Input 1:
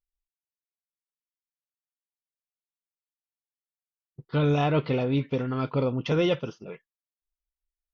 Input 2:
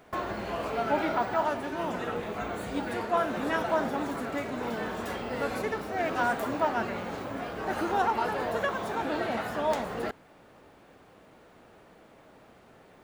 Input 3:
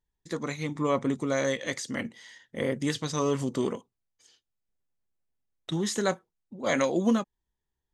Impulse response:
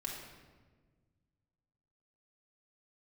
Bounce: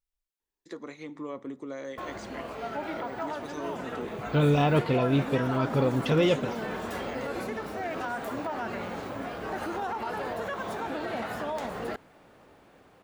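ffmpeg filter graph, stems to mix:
-filter_complex "[0:a]volume=0.5dB[link_01];[1:a]dynaudnorm=framelen=360:gausssize=13:maxgain=6dB,adelay=1850,volume=-6dB[link_02];[2:a]aemphasis=mode=reproduction:type=50fm,acrossover=split=160[link_03][link_04];[link_04]acompressor=threshold=-38dB:ratio=2.5[link_05];[link_03][link_05]amix=inputs=2:normalize=0,lowshelf=frequency=220:width_type=q:width=1.5:gain=-11,adelay=400,volume=-4dB,asplit=2[link_06][link_07];[link_07]volume=-19dB[link_08];[link_02][link_06]amix=inputs=2:normalize=0,alimiter=level_in=0.5dB:limit=-24dB:level=0:latency=1:release=84,volume=-0.5dB,volume=0dB[link_09];[3:a]atrim=start_sample=2205[link_10];[link_08][link_10]afir=irnorm=-1:irlink=0[link_11];[link_01][link_09][link_11]amix=inputs=3:normalize=0"

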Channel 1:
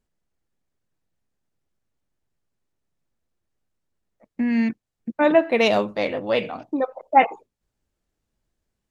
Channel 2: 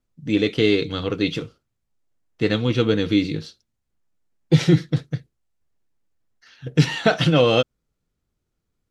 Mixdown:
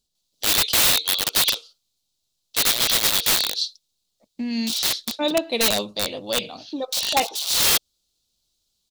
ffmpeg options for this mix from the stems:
ffmpeg -i stem1.wav -i stem2.wav -filter_complex "[0:a]volume=-5dB,asplit=2[link_01][link_02];[1:a]aeval=exprs='(mod(8.91*val(0)+1,2)-1)/8.91':channel_layout=same,highpass=frequency=580:width=0.5412,highpass=frequency=580:width=1.3066,asoftclip=type=tanh:threshold=-16dB,adelay=150,volume=-3dB[link_03];[link_02]apad=whole_len=399341[link_04];[link_03][link_04]sidechaincompress=threshold=-38dB:ratio=4:attack=5.7:release=329[link_05];[link_01][link_05]amix=inputs=2:normalize=0,highshelf=frequency=2700:width_type=q:width=3:gain=13.5,aeval=exprs='(mod(3.55*val(0)+1,2)-1)/3.55':channel_layout=same" out.wav

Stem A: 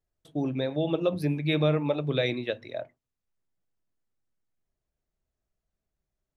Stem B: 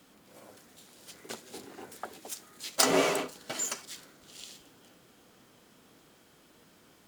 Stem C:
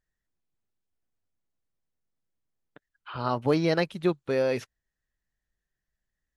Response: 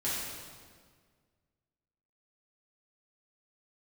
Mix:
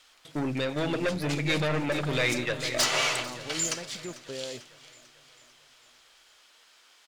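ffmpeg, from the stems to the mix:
-filter_complex "[0:a]highshelf=frequency=4500:gain=8.5,aeval=exprs='(tanh(25.1*val(0)+0.3)-tanh(0.3))/25.1':channel_layout=same,equalizer=frequency=2000:width_type=o:width=1.2:gain=10.5,volume=2.5dB,asplit=2[link_01][link_02];[link_02]volume=-10.5dB[link_03];[1:a]highpass=770,equalizer=frequency=4400:width_type=o:width=2.8:gain=10.5,volume=17dB,asoftclip=hard,volume=-17dB,volume=-1.5dB,asplit=2[link_04][link_05];[link_05]volume=-19.5dB[link_06];[2:a]alimiter=limit=-18dB:level=0:latency=1,volume=-11.5dB[link_07];[link_03][link_06]amix=inputs=2:normalize=0,aecho=0:1:445|890|1335|1780|2225|2670|3115|3560:1|0.56|0.314|0.176|0.0983|0.0551|0.0308|0.0173[link_08];[link_01][link_04][link_07][link_08]amix=inputs=4:normalize=0,highshelf=frequency=9100:gain=-9.5"

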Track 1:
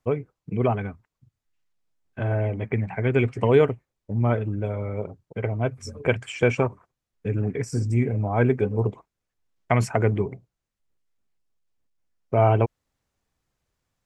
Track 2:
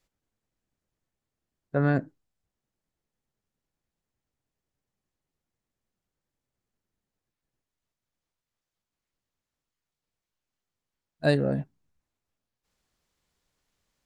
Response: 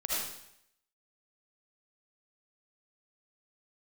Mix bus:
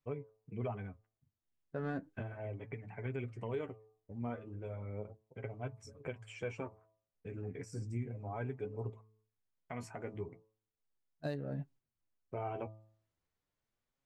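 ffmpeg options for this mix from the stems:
-filter_complex "[0:a]bandreject=frequency=108.9:width_type=h:width=4,bandreject=frequency=217.8:width_type=h:width=4,bandreject=frequency=326.7:width_type=h:width=4,bandreject=frequency=435.6:width_type=h:width=4,bandreject=frequency=544.5:width_type=h:width=4,bandreject=frequency=653.4:width_type=h:width=4,bandreject=frequency=762.3:width_type=h:width=4,bandreject=frequency=871.2:width_type=h:width=4,bandreject=frequency=980.1:width_type=h:width=4,bandreject=frequency=1089:width_type=h:width=4,bandreject=frequency=1197.9:width_type=h:width=4,volume=-1dB[link_01];[1:a]adynamicsmooth=sensitivity=7.5:basefreq=3900,volume=-7.5dB,asplit=2[link_02][link_03];[link_03]apad=whole_len=619628[link_04];[link_01][link_04]sidechaingate=range=-11dB:threshold=-59dB:ratio=16:detection=peak[link_05];[link_05][link_02]amix=inputs=2:normalize=0,flanger=delay=6.8:depth=5.8:regen=28:speed=0.35:shape=sinusoidal,alimiter=level_in=5dB:limit=-24dB:level=0:latency=1:release=266,volume=-5dB"

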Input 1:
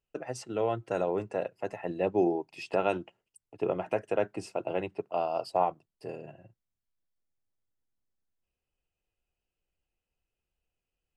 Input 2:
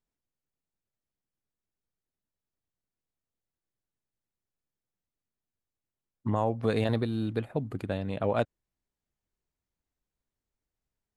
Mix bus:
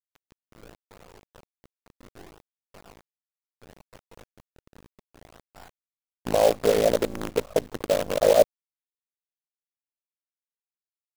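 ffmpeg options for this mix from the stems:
ffmpeg -i stem1.wav -i stem2.wav -filter_complex "[0:a]bandreject=frequency=610:width=12,asubboost=boost=5:cutoff=130,acrusher=samples=35:mix=1:aa=0.000001:lfo=1:lforange=56:lforate=0.67,volume=-14.5dB[link_01];[1:a]lowpass=frequency=580:width_type=q:width=4,aemphasis=mode=production:type=riaa,acontrast=29,volume=2dB[link_02];[link_01][link_02]amix=inputs=2:normalize=0,highpass=frequency=53:poles=1,aeval=exprs='val(0)*sin(2*PI*27*n/s)':channel_layout=same,acrusher=bits=5:dc=4:mix=0:aa=0.000001" out.wav

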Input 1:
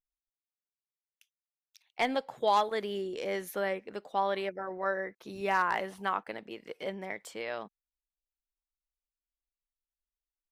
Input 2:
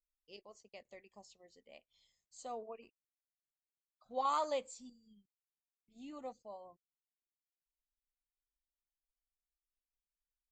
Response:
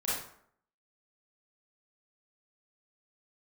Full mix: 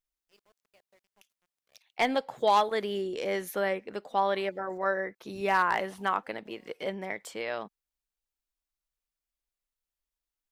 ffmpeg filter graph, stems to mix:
-filter_complex "[0:a]volume=3dB,asplit=2[link_01][link_02];[1:a]acompressor=threshold=-45dB:ratio=6,aeval=exprs='val(0)*gte(abs(val(0)),0.00211)':channel_layout=same,volume=-10.5dB[link_03];[link_02]apad=whole_len=463667[link_04];[link_03][link_04]sidechaincompress=threshold=-39dB:ratio=4:attack=35:release=239[link_05];[link_01][link_05]amix=inputs=2:normalize=0,asoftclip=type=hard:threshold=-15.5dB"

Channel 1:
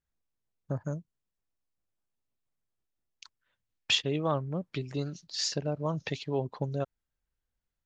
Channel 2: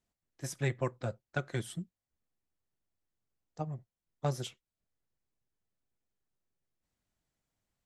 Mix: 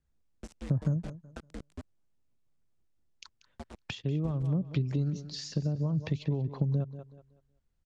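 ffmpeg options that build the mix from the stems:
ffmpeg -i stem1.wav -i stem2.wav -filter_complex "[0:a]acompressor=threshold=-31dB:ratio=6,volume=0.5dB,asplit=2[link_01][link_02];[link_02]volume=-15.5dB[link_03];[1:a]acompressor=threshold=-35dB:ratio=6,acrusher=bits=5:mix=0:aa=0.000001,aeval=exprs='val(0)*sin(2*PI*85*n/s)':channel_layout=same,volume=-9.5dB[link_04];[link_03]aecho=0:1:187|374|561|748:1|0.28|0.0784|0.022[link_05];[link_01][link_04][link_05]amix=inputs=3:normalize=0,lowpass=frequency=9200:width=0.5412,lowpass=frequency=9200:width=1.3066,lowshelf=frequency=460:gain=11,acrossover=split=240[link_06][link_07];[link_07]acompressor=threshold=-38dB:ratio=10[link_08];[link_06][link_08]amix=inputs=2:normalize=0" out.wav

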